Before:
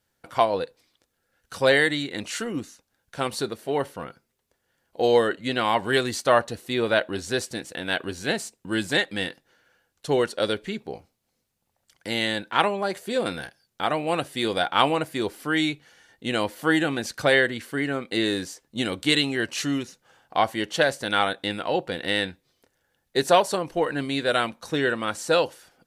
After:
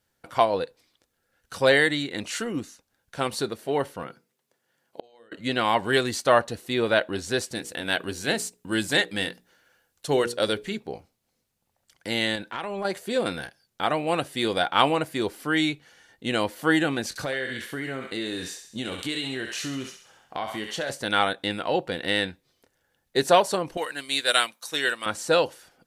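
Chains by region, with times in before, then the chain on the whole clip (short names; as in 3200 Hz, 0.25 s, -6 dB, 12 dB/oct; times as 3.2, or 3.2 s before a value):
4.03–5.32 HPF 120 Hz 24 dB/oct + notches 60/120/180/240/300/360/420/480 Hz + flipped gate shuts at -18 dBFS, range -33 dB
7.55–10.79 high shelf 6600 Hz +6.5 dB + notches 60/120/180/240/300/360/420/480 Hz
12.35–12.85 compressor 12:1, threshold -26 dBFS + transient shaper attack -4 dB, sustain +1 dB
17.09–20.9 doubler 23 ms -9.5 dB + thinning echo 66 ms, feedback 53%, high-pass 940 Hz, level -7 dB + compressor 3:1, threshold -29 dBFS
23.77–25.06 tilt +4.5 dB/oct + upward expander, over -35 dBFS
whole clip: dry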